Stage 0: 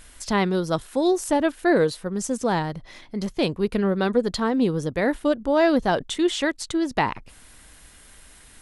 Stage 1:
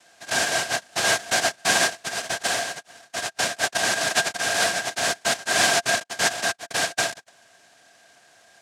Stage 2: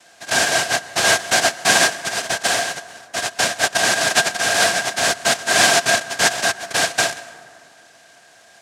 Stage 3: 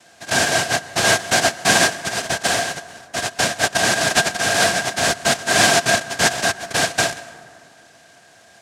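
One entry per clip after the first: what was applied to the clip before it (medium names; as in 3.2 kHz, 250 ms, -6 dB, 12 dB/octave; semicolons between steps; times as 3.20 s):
noise-vocoded speech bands 1; small resonant body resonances 690/1600 Hz, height 17 dB, ringing for 45 ms; trim -4.5 dB
plate-style reverb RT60 2.2 s, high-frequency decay 0.45×, pre-delay 105 ms, DRR 16.5 dB; trim +5.5 dB
bass shelf 300 Hz +9 dB; trim -1 dB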